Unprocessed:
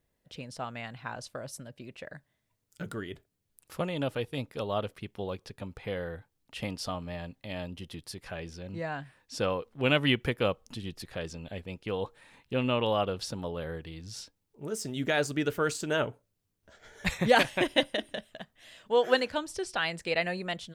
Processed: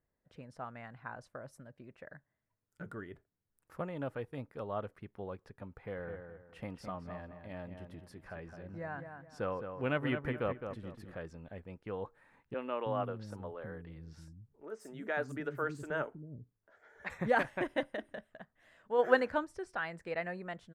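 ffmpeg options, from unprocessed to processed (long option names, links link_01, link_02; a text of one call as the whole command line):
ffmpeg -i in.wav -filter_complex "[0:a]asplit=3[link_01][link_02][link_03];[link_01]afade=type=out:start_time=5.95:duration=0.02[link_04];[link_02]asplit=2[link_05][link_06];[link_06]adelay=212,lowpass=frequency=2500:poles=1,volume=-7dB,asplit=2[link_07][link_08];[link_08]adelay=212,lowpass=frequency=2500:poles=1,volume=0.32,asplit=2[link_09][link_10];[link_10]adelay=212,lowpass=frequency=2500:poles=1,volume=0.32,asplit=2[link_11][link_12];[link_12]adelay=212,lowpass=frequency=2500:poles=1,volume=0.32[link_13];[link_05][link_07][link_09][link_11][link_13]amix=inputs=5:normalize=0,afade=type=in:start_time=5.95:duration=0.02,afade=type=out:start_time=11.15:duration=0.02[link_14];[link_03]afade=type=in:start_time=11.15:duration=0.02[link_15];[link_04][link_14][link_15]amix=inputs=3:normalize=0,asettb=1/sr,asplit=3[link_16][link_17][link_18];[link_16]atrim=end=12.544[link_19];[link_17]atrim=start=12.54:end=17.1,asetpts=PTS-STARTPTS,afade=type=in:duration=0.004:curve=qsin,afade=type=out:start_time=4.556:duration=0.004:curve=qsin,acrossover=split=260|6000[link_20][link_21][link_22];[link_22]adelay=50[link_23];[link_20]adelay=320[link_24];[link_24][link_21][link_23]amix=inputs=3:normalize=0,atrim=end_sample=201096[link_25];[link_18]atrim=start=17.096[link_26];[link_19][link_25]acrossfade=duration=0.004:curve1=hsin:curve2=qsin[link_27];[link_27][link_26]acrossfade=duration=0.004:curve1=qsin:curve2=hsin,asplit=3[link_28][link_29][link_30];[link_28]afade=type=out:start_time=18.98:duration=0.02[link_31];[link_29]acontrast=46,afade=type=in:start_time=18.98:duration=0.02,afade=type=out:start_time=19.44:duration=0.02[link_32];[link_30]afade=type=in:start_time=19.44:duration=0.02[link_33];[link_31][link_32][link_33]amix=inputs=3:normalize=0,highshelf=frequency=2300:width_type=q:width=1.5:gain=-11,volume=-7.5dB" out.wav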